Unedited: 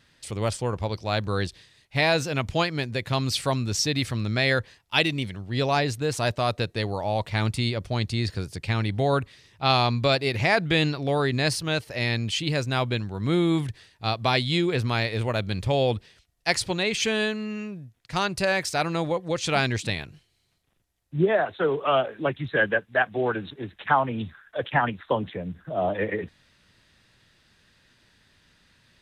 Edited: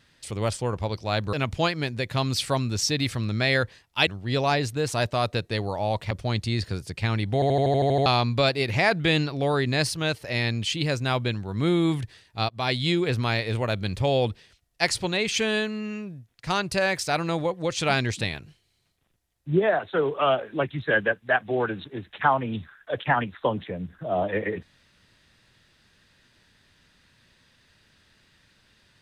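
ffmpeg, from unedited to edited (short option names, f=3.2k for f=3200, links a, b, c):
-filter_complex "[0:a]asplit=14[a][b][c][d][e][f][g][h][i][j][k][l][m][n];[a]atrim=end=1.332[o];[b]atrim=start=2.288:end=5.032[p];[c]atrim=start=5.318:end=7.362[q];[d]atrim=start=7.768:end=9.082[r];[e]atrim=start=8.998:end=9.082[s];[f]atrim=start=8.998:end=9.082[t];[g]atrim=start=8.998:end=9.082[u];[h]atrim=start=8.998:end=9.082[v];[i]atrim=start=8.998:end=9.082[w];[j]atrim=start=8.998:end=9.082[x];[k]atrim=start=8.998:end=9.082[y];[l]atrim=start=8.998:end=9.082[z];[m]atrim=start=9.718:end=14.15,asetpts=PTS-STARTPTS,afade=t=out:st=4.428:d=0.004:c=hsin:silence=0.0707946[aa];[n]atrim=start=14.15,asetpts=PTS-STARTPTS,afade=t=in:d=0.39:c=qsin:silence=0.0707946[ab];[o][p]acrossfade=d=0.004:c1=hsin:c2=hsin[ac];[ac][q]acrossfade=d=0.004:c1=hsin:c2=hsin[ad];[ad][r]acrossfade=d=0.004:c1=hsin:c2=hsin[ae];[ae][s]acrossfade=d=0.004:c1=hsin:c2=hsin[af];[af][t]acrossfade=d=0.004:c1=hsin:c2=hsin[ag];[ag][u]acrossfade=d=0.004:c1=hsin:c2=hsin[ah];[ah][v]acrossfade=d=0.004:c1=hsin:c2=hsin[ai];[ai][w]acrossfade=d=0.004:c1=hsin:c2=hsin[aj];[aj][x]acrossfade=d=0.004:c1=hsin:c2=hsin[ak];[ak][y]acrossfade=d=0.004:c1=hsin:c2=hsin[al];[al][z]acrossfade=d=0.004:c1=hsin:c2=hsin[am];[aa][ab]concat=n=2:v=0:a=1[an];[am][an]acrossfade=d=0.004:c1=hsin:c2=hsin"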